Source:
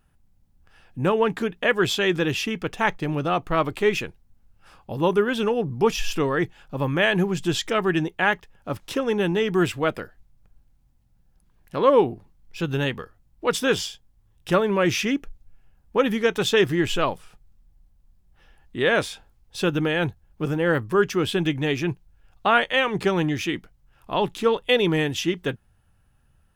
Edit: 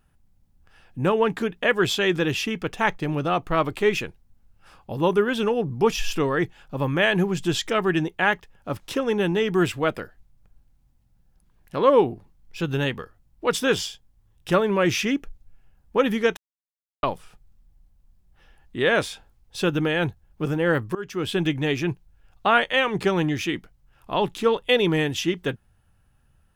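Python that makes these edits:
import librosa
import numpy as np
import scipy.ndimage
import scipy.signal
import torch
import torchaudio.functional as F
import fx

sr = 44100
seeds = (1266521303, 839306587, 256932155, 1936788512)

y = fx.edit(x, sr, fx.silence(start_s=16.37, length_s=0.66),
    fx.fade_in_from(start_s=20.95, length_s=0.44, floor_db=-21.5), tone=tone)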